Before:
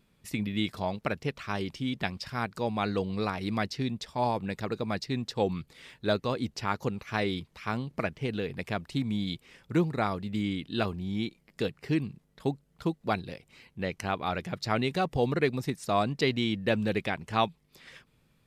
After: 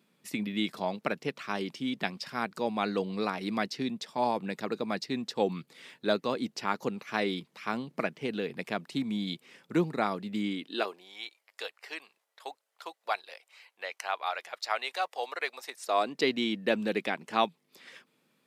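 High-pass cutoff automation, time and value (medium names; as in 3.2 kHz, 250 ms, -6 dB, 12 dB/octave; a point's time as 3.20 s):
high-pass 24 dB/octave
10.45 s 180 Hz
11.18 s 640 Hz
15.65 s 640 Hz
16.26 s 210 Hz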